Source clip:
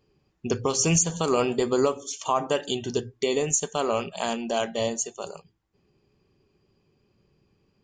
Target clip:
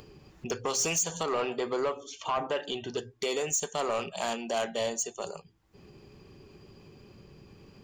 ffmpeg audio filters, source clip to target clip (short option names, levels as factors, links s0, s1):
-filter_complex "[0:a]acrossover=split=440[s0][s1];[s0]acompressor=threshold=0.0112:ratio=6[s2];[s2][s1]amix=inputs=2:normalize=0,asoftclip=type=tanh:threshold=0.0708,asettb=1/sr,asplit=3[s3][s4][s5];[s3]atrim=end=1.234[s6];[s4]atrim=start=1.23:end=2.98,asetpts=PTS-STARTPTS,afade=t=in:d=0.004:c=qsin,afade=t=out:st=1.746:d=0.004:c=qsin,lowpass=3500[s7];[s5]atrim=start=2.976[s8];[s6][s7]acrossfade=d=0.004:c1=hsin:c2=qsin[s9];[s9][s8]acrossfade=d=0.004:c1=qsin:c2=hsin,acompressor=mode=upward:threshold=0.0112:ratio=2.5"